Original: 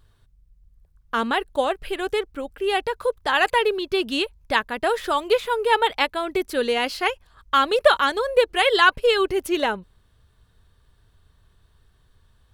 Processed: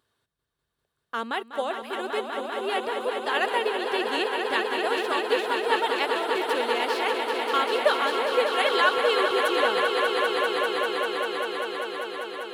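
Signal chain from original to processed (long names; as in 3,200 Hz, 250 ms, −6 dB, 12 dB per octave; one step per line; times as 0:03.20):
high-pass filter 260 Hz 12 dB per octave
echo that builds up and dies away 197 ms, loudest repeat 5, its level −7 dB
level −6.5 dB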